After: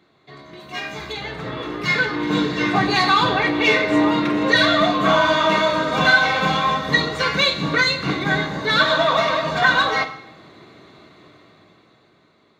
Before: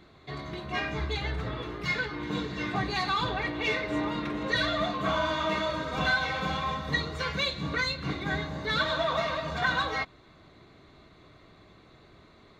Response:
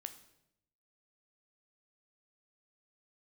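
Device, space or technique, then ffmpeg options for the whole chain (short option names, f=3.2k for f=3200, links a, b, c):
far laptop microphone: -filter_complex "[0:a]asplit=3[a][b][c];[a]afade=t=out:st=0.59:d=0.02[d];[b]aemphasis=mode=production:type=75kf,afade=t=in:st=0.59:d=0.02,afade=t=out:st=1.11:d=0.02[e];[c]afade=t=in:st=1.11:d=0.02[f];[d][e][f]amix=inputs=3:normalize=0[g];[1:a]atrim=start_sample=2205[h];[g][h]afir=irnorm=-1:irlink=0,highpass=150,dynaudnorm=f=240:g=13:m=15dB,volume=1.5dB"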